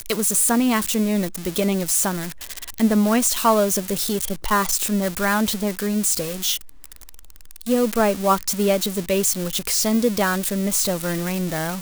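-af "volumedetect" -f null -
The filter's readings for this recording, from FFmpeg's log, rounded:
mean_volume: -21.5 dB
max_volume: -5.9 dB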